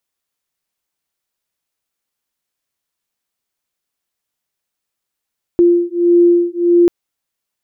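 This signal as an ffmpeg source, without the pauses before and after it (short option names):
-f lavfi -i "aevalsrc='0.266*(sin(2*PI*346*t)+sin(2*PI*347.6*t))':d=1.29:s=44100"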